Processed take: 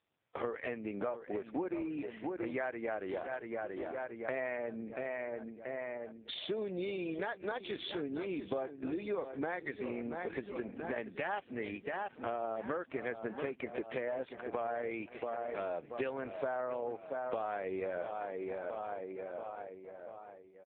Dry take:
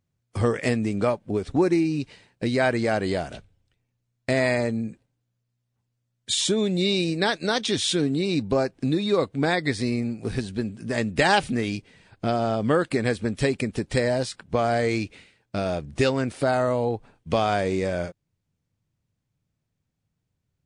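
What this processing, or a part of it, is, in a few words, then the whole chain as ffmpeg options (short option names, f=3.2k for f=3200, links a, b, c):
voicemail: -filter_complex "[0:a]asplit=3[a][b][c];[a]afade=t=out:st=4.72:d=0.02[d];[b]lowpass=f=6.7k:w=0.5412,lowpass=f=6.7k:w=1.3066,afade=t=in:st=4.72:d=0.02,afade=t=out:st=6.73:d=0.02[e];[c]afade=t=in:st=6.73:d=0.02[f];[d][e][f]amix=inputs=3:normalize=0,highpass=420,lowpass=2.6k,asplit=2[g][h];[h]adelay=683,lowpass=f=3.2k:p=1,volume=-12dB,asplit=2[i][j];[j]adelay=683,lowpass=f=3.2k:p=1,volume=0.5,asplit=2[k][l];[l]adelay=683,lowpass=f=3.2k:p=1,volume=0.5,asplit=2[m][n];[n]adelay=683,lowpass=f=3.2k:p=1,volume=0.5,asplit=2[o][p];[p]adelay=683,lowpass=f=3.2k:p=1,volume=0.5[q];[g][i][k][m][o][q]amix=inputs=6:normalize=0,acompressor=threshold=-40dB:ratio=6,volume=5.5dB" -ar 8000 -c:a libopencore_amrnb -b:a 5150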